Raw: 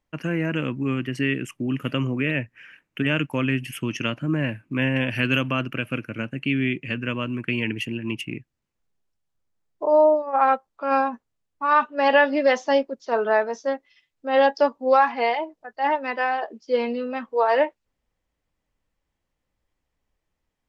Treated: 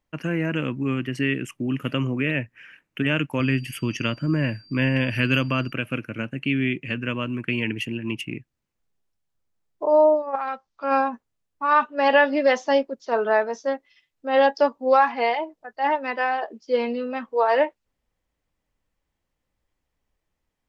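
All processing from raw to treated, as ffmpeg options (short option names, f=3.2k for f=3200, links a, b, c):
-filter_complex "[0:a]asettb=1/sr,asplit=3[a][b][c];[a]atrim=end=3.404[d];[b]atrim=start=3.4:end=5.72,asetpts=PTS-STARTPTS,afade=t=in:d=0.004:c=qsin,afade=t=out:st=2.316:d=0.004:c=qsin,lowshelf=f=71:g=11.5,aeval=exprs='val(0)+0.00316*sin(2*PI*4700*n/s)':c=same,bandreject=f=750:w=9.5[e];[c]atrim=start=5.716[f];[d][e]acrossfade=d=0.004:c1=hsin:c2=qsin[g];[g][f]acrossfade=d=0.004:c1=qsin:c2=hsin,asettb=1/sr,asplit=3[h][i][j];[h]atrim=end=10.354[k];[i]atrim=start=10.35:end=10.84,asetpts=PTS-STARTPTS,afade=t=in:d=0.004:c=qsin,afade=t=out:st=0.486:d=0.004:c=qsin,equalizer=f=480:w=0.62:g=-6.5,acompressor=threshold=-26dB:ratio=3:attack=3.2:release=140:knee=1:detection=peak,lowpass=f=5.4k:t=q:w=2.1[l];[j]atrim=start=10.836[m];[k][l]acrossfade=d=0.004:c1=hsin:c2=qsin[n];[n][m]acrossfade=d=0.004:c1=qsin:c2=hsin"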